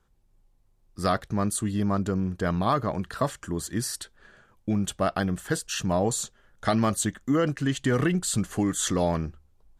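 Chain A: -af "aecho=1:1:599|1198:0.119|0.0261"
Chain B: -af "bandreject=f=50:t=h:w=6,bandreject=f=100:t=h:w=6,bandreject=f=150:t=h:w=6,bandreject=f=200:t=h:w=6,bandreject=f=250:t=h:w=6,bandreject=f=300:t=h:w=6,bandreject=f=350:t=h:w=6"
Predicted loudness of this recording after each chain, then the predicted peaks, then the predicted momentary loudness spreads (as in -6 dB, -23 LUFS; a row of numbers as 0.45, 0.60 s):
-27.0, -27.5 LUFS; -10.5, -10.5 dBFS; 8, 7 LU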